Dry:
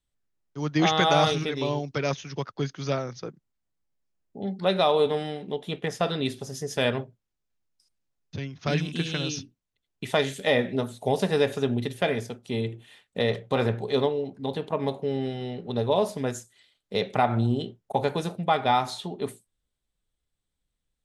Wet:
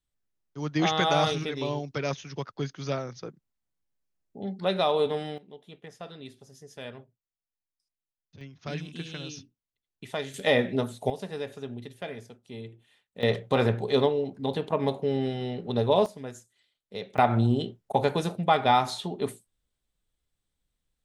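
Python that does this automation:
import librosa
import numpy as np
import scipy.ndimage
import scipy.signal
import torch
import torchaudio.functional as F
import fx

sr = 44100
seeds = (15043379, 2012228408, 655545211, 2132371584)

y = fx.gain(x, sr, db=fx.steps((0.0, -3.0), (5.38, -16.0), (8.41, -9.0), (10.34, 0.0), (11.1, -12.0), (13.23, 1.0), (16.06, -10.0), (17.18, 1.0)))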